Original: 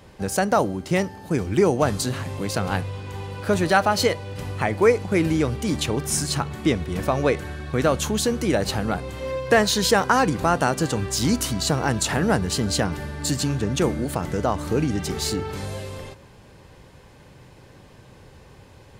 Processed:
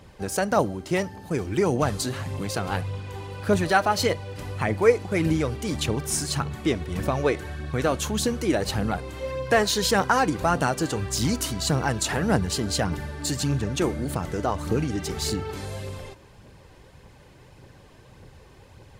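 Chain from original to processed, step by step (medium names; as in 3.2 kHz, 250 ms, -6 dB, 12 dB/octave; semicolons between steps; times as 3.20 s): phaser 1.7 Hz, delay 3.3 ms, feedback 37%; trim -3 dB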